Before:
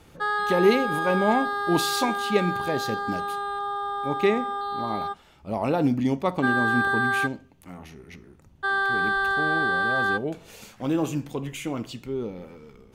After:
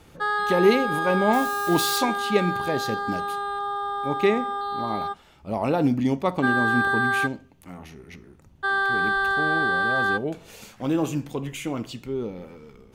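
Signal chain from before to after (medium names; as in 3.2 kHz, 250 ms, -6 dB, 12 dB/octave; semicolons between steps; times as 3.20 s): 1.33–1.98 s: zero-crossing glitches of -27 dBFS; trim +1 dB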